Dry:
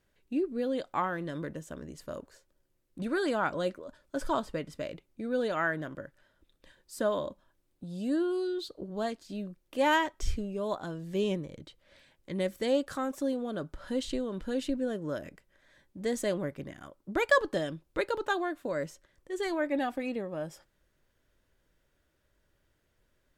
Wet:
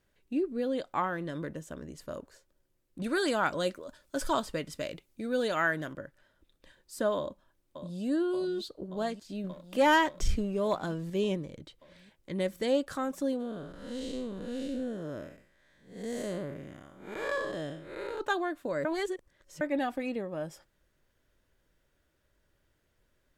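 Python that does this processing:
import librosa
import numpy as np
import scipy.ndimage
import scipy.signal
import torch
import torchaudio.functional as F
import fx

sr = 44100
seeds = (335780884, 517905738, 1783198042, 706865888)

y = fx.high_shelf(x, sr, hz=2700.0, db=9.0, at=(3.04, 5.93))
y = fx.echo_throw(y, sr, start_s=7.17, length_s=0.86, ms=580, feedback_pct=80, wet_db=-10.0)
y = fx.leveller(y, sr, passes=1, at=(9.44, 11.1))
y = fx.spec_blur(y, sr, span_ms=203.0, at=(13.39, 18.19), fade=0.02)
y = fx.edit(y, sr, fx.reverse_span(start_s=18.85, length_s=0.76), tone=tone)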